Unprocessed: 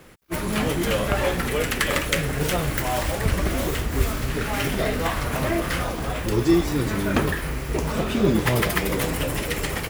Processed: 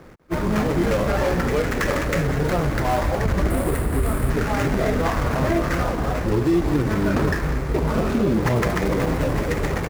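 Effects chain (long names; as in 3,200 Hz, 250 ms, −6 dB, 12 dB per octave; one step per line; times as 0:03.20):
running median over 15 samples
0:03.50–0:04.30: high shelf with overshoot 7,500 Hz +8 dB, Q 3
brickwall limiter −17 dBFS, peak gain reduction 8.5 dB
on a send: single-tap delay 196 ms −14 dB
on the sum: level +5 dB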